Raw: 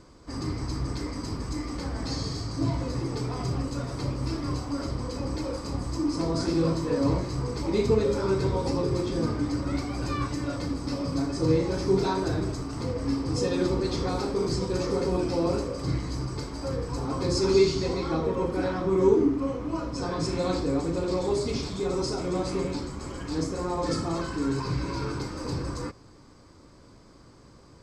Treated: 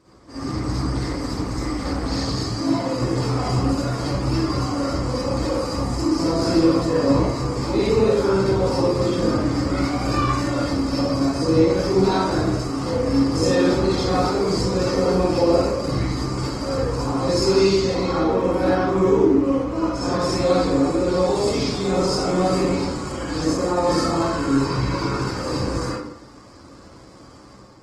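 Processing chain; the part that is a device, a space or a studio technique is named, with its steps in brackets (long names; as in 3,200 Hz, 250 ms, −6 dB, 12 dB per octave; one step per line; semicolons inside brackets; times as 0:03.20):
0:02.48–0:02.94: Chebyshev high-pass filter 170 Hz, order 3
far-field microphone of a smart speaker (convolution reverb RT60 0.65 s, pre-delay 45 ms, DRR −8 dB; high-pass filter 160 Hz 6 dB per octave; automatic gain control gain up to 5 dB; level −3 dB; Opus 20 kbit/s 48,000 Hz)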